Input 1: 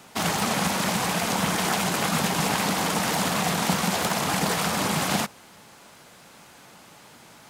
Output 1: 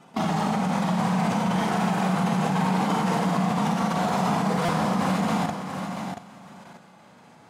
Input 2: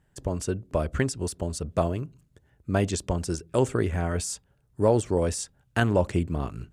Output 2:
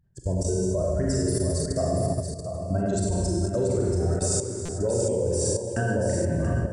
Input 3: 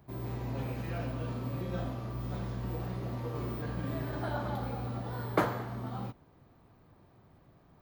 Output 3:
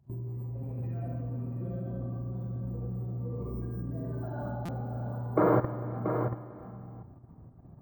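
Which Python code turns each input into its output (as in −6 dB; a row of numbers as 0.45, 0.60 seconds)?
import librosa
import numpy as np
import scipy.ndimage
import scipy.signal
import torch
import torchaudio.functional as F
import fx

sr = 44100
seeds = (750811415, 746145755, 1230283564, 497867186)

p1 = fx.spec_expand(x, sr, power=2.0)
p2 = fx.rev_schroeder(p1, sr, rt60_s=1.8, comb_ms=33, drr_db=-4.5)
p3 = fx.level_steps(p2, sr, step_db=14)
p4 = p3 + fx.echo_single(p3, sr, ms=682, db=-7.5, dry=0)
p5 = fx.buffer_glitch(p4, sr, at_s=(4.65,), block=256, repeats=5)
y = p5 * 10.0 ** (-12 / 20.0) / np.max(np.abs(p5))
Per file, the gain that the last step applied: +3.5, +3.5, +5.5 decibels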